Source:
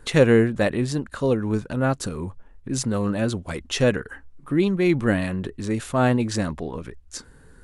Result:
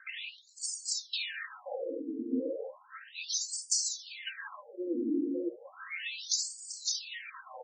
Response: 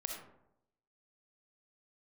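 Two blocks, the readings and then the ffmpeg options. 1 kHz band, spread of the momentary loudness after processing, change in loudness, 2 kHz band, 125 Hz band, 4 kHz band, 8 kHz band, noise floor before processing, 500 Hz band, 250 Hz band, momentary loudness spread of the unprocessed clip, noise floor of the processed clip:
−18.5 dB, 13 LU, −12.0 dB, −11.5 dB, below −40 dB, −1.0 dB, +2.5 dB, −50 dBFS, −17.0 dB, −14.5 dB, 18 LU, −57 dBFS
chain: -filter_complex "[0:a]highshelf=frequency=4200:gain=11,aecho=1:1:560|1064|1518|1926|2293:0.631|0.398|0.251|0.158|0.1[link_01];[1:a]atrim=start_sample=2205,asetrate=66150,aresample=44100[link_02];[link_01][link_02]afir=irnorm=-1:irlink=0,aphaser=in_gain=1:out_gain=1:delay=1.8:decay=0.54:speed=0.38:type=triangular,acontrast=89,equalizer=frequency=710:width=0.91:gain=-8,crystalizer=i=1:c=0,acompressor=threshold=-24dB:ratio=12,aecho=1:1:3.8:0.91,afftfilt=real='re*between(b*sr/1024,320*pow(6400/320,0.5+0.5*sin(2*PI*0.34*pts/sr))/1.41,320*pow(6400/320,0.5+0.5*sin(2*PI*0.34*pts/sr))*1.41)':imag='im*between(b*sr/1024,320*pow(6400/320,0.5+0.5*sin(2*PI*0.34*pts/sr))/1.41,320*pow(6400/320,0.5+0.5*sin(2*PI*0.34*pts/sr))*1.41)':win_size=1024:overlap=0.75,volume=-2dB"

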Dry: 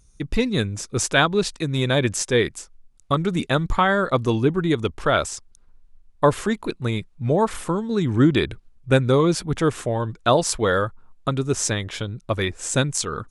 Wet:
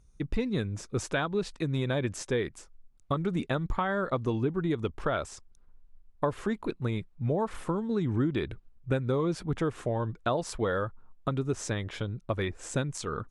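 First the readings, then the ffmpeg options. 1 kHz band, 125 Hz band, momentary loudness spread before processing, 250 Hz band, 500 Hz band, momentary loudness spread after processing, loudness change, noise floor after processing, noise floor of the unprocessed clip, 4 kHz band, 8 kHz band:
−10.5 dB, −8.0 dB, 9 LU, −8.5 dB, −9.0 dB, 5 LU, −9.5 dB, −59 dBFS, −54 dBFS, −14.5 dB, −15.0 dB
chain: -af "acompressor=threshold=-21dB:ratio=4,highshelf=frequency=3400:gain=-11,volume=-4dB" -ar 48000 -c:a libvorbis -b:a 128k

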